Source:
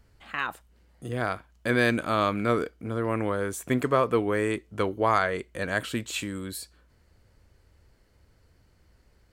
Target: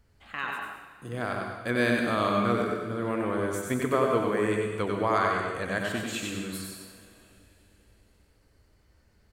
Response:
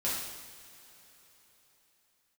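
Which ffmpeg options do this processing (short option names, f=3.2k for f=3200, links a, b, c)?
-filter_complex "[0:a]aecho=1:1:93:0.596,asplit=2[a][b];[1:a]atrim=start_sample=2205,asetrate=48510,aresample=44100,adelay=98[c];[b][c]afir=irnorm=-1:irlink=0,volume=-8.5dB[d];[a][d]amix=inputs=2:normalize=0,volume=-4dB"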